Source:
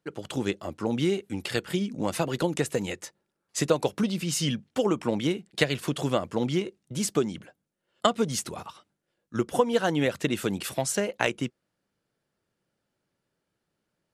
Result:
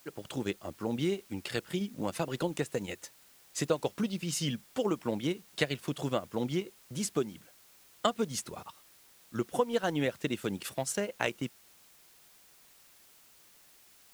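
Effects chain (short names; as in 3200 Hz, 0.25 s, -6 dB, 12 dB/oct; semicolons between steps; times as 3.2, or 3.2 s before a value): transient shaper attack -1 dB, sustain -7 dB; added noise white -55 dBFS; gain -5 dB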